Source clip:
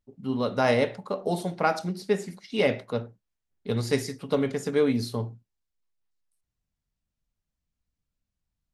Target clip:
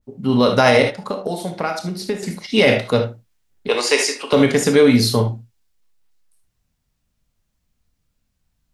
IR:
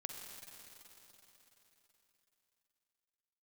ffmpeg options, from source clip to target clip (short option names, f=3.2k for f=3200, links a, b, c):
-filter_complex "[0:a]asettb=1/sr,asplit=3[a][b][c];[a]atrim=end=0.824[d];[b]atrim=start=0.82:end=2.23,asetpts=PTS-STARTPTS,afade=t=in:d=0.004:c=qsin,afade=t=out:st=1.406:d=0.004:c=qsin,acompressor=threshold=-34dB:ratio=6[e];[c]atrim=start=2.226[f];[d][e]acrossfade=d=0.004:c1=hsin:c2=qsin[g];[g][f]acrossfade=d=0.004:c1=qsin:c2=hsin,asettb=1/sr,asplit=3[h][i][j];[h]atrim=end=3.684[k];[i]atrim=start=3.68:end=4.33,asetpts=PTS-STARTPTS,afade=t=in:d=0.004:c=qsin,afade=t=out:st=0.646:d=0.004:c=qsin,highpass=f=380:w=0.5412,highpass=f=380:w=1.3066,equalizer=f=1k:t=q:w=4:g=7,equalizer=f=2.7k:t=q:w=4:g=8,equalizer=f=3.8k:t=q:w=4:g=-4,lowpass=f=9.5k:w=0.5412,lowpass=f=9.5k:w=1.3066[l];[j]atrim=start=4.326[m];[k][l]acrossfade=d=0.004:c1=hsin:c2=qsin[n];[n][m]acrossfade=d=0.004:c1=qsin:c2=hsin[o];[1:a]atrim=start_sample=2205,atrim=end_sample=6174,asetrate=74970,aresample=44100[p];[o][p]afir=irnorm=-1:irlink=0,alimiter=level_in=24.5dB:limit=-1dB:release=50:level=0:latency=1,adynamicequalizer=threshold=0.0562:dfrequency=1600:dqfactor=0.7:tfrequency=1600:tqfactor=0.7:attack=5:release=100:ratio=0.375:range=2.5:mode=boostabove:tftype=highshelf,volume=-3dB"